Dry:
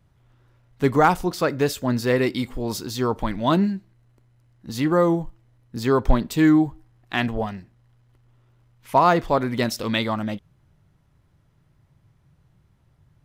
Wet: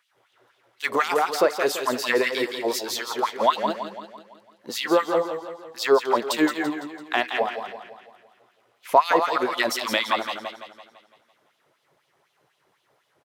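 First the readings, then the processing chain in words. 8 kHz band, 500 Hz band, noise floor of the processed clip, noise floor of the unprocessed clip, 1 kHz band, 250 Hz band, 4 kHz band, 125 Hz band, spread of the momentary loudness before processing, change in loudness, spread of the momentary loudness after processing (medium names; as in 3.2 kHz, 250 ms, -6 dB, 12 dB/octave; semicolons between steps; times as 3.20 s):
+3.0 dB, 0.0 dB, -70 dBFS, -62 dBFS, +0.5 dB, -8.0 dB, +4.0 dB, -22.0 dB, 12 LU, -1.5 dB, 13 LU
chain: wow and flutter 54 cents; on a send: delay 171 ms -10 dB; on the sum: LFO high-pass sine 4 Hz 410–3400 Hz; compression 1.5:1, threshold -28 dBFS, peak gain reduction 8 dB; modulated delay 168 ms, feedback 51%, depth 86 cents, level -9.5 dB; trim +3.5 dB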